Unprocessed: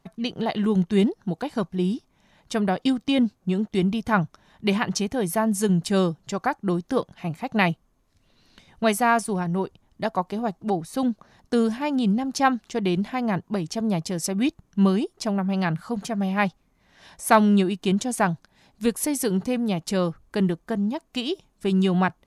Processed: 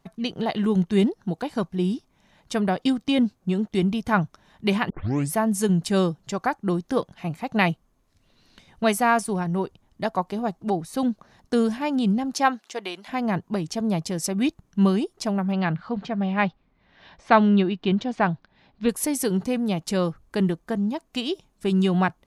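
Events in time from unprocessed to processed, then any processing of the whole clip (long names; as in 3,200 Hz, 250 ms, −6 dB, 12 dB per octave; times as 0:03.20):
0:04.90: tape start 0.43 s
0:12.33–0:13.07: high-pass filter 240 Hz → 920 Hz
0:15.52–0:18.89: low-pass filter 4,100 Hz 24 dB per octave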